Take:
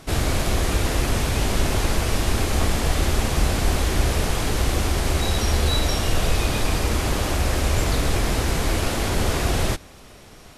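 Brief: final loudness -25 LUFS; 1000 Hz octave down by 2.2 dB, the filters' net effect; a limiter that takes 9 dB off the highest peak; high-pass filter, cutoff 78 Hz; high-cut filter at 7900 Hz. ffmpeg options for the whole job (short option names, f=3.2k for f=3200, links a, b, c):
-af "highpass=78,lowpass=7.9k,equalizer=f=1k:t=o:g=-3,volume=3.5dB,alimiter=limit=-16dB:level=0:latency=1"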